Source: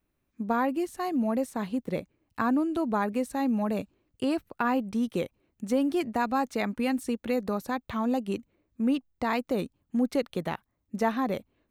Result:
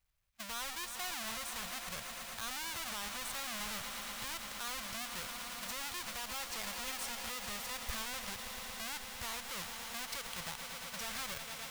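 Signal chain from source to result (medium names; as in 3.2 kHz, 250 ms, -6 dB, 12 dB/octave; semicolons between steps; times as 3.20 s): square wave that keeps the level; amplifier tone stack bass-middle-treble 10-0-10; echo with a slow build-up 114 ms, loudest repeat 5, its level -17 dB; peak limiter -24 dBFS, peak gain reduction 13 dB; trim -1 dB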